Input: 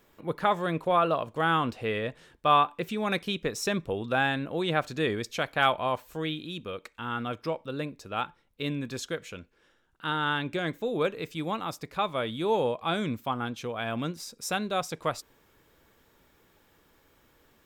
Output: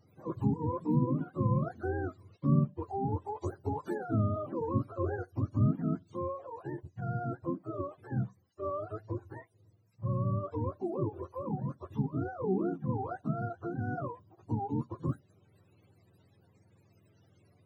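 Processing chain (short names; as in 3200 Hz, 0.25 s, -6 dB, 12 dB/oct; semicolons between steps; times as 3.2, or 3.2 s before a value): spectrum mirrored in octaves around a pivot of 410 Hz; in parallel at -2.5 dB: compressor, threshold -37 dBFS, peak gain reduction 19 dB; on the sum: gain -5 dB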